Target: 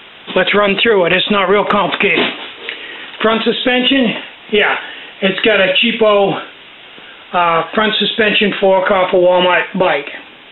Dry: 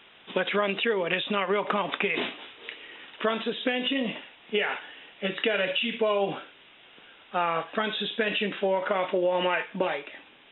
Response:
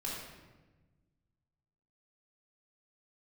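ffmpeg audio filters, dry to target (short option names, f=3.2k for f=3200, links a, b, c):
-af "apsyclip=20.5dB,volume=-4dB"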